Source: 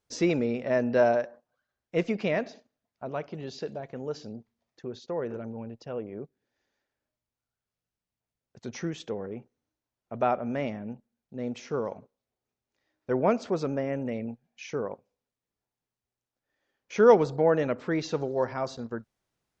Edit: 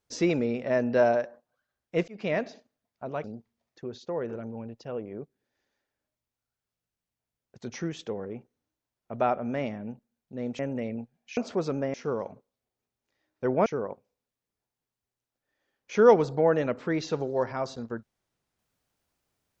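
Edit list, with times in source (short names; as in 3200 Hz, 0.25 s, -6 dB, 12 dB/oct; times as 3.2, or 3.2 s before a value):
2.08–2.33 fade in
3.24–4.25 cut
11.6–13.32 swap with 13.89–14.67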